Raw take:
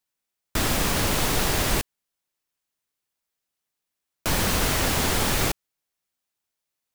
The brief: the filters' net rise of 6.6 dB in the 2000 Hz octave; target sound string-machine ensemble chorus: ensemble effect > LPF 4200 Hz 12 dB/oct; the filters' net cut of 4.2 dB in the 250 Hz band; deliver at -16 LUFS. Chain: bell 250 Hz -6 dB; bell 2000 Hz +8.5 dB; ensemble effect; LPF 4200 Hz 12 dB/oct; gain +10 dB

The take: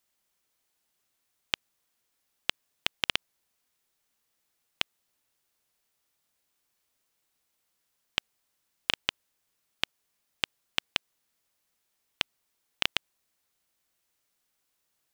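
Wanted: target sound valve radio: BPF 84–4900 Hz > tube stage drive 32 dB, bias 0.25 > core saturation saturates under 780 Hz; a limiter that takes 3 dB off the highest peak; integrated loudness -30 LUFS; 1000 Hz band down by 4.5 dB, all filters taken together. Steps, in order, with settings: bell 1000 Hz -6 dB; limiter -8 dBFS; BPF 84–4900 Hz; tube stage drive 32 dB, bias 0.25; core saturation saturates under 780 Hz; gain +24 dB

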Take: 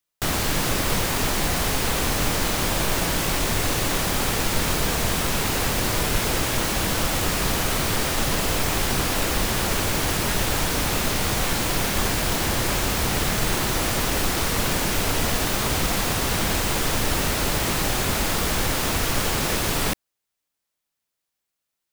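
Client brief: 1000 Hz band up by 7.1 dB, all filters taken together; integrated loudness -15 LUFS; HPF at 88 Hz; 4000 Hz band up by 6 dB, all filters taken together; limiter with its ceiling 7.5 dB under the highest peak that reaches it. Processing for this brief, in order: HPF 88 Hz; bell 1000 Hz +8.5 dB; bell 4000 Hz +7 dB; gain +7 dB; limiter -7 dBFS

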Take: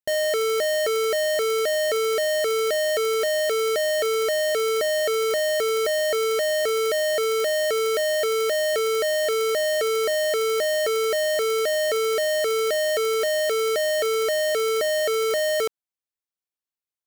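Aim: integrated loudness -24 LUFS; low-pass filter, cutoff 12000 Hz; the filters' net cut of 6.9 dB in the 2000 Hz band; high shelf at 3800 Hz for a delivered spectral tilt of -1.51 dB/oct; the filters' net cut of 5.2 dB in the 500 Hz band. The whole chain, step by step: LPF 12000 Hz; bell 500 Hz -6 dB; bell 2000 Hz -6 dB; high shelf 3800 Hz -5 dB; gain +3.5 dB

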